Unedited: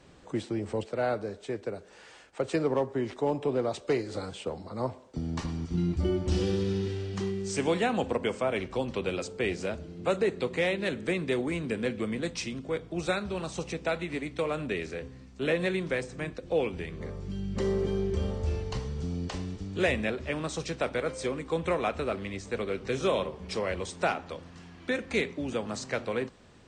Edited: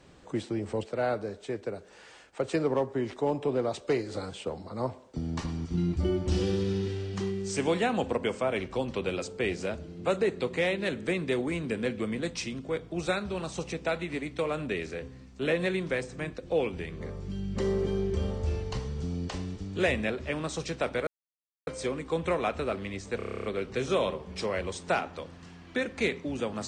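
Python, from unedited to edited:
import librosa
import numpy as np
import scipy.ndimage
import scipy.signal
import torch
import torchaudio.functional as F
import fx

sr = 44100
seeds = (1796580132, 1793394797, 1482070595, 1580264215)

y = fx.edit(x, sr, fx.insert_silence(at_s=21.07, length_s=0.6),
    fx.stutter(start_s=22.57, slice_s=0.03, count=10), tone=tone)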